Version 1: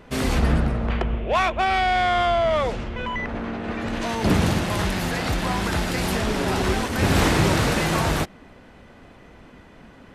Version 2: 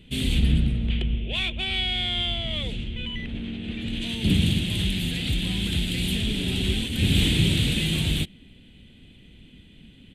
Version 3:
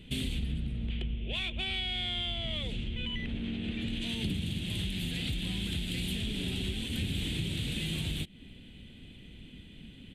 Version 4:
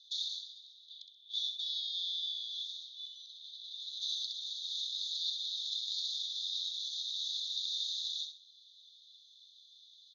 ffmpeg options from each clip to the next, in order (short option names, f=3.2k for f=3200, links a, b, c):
-af "firequalizer=gain_entry='entry(190,0);entry(590,-19);entry(1100,-26);entry(2400,-1);entry(3300,9);entry(5300,-14);entry(8400,0);entry(12000,-4)':delay=0.05:min_phase=1"
-af "acompressor=threshold=-31dB:ratio=6"
-filter_complex "[0:a]asuperpass=centerf=4900:order=20:qfactor=1.6,asplit=2[a][b];[b]aecho=0:1:65|130|195|260:0.447|0.143|0.0457|0.0146[c];[a][c]amix=inputs=2:normalize=0,volume=8.5dB"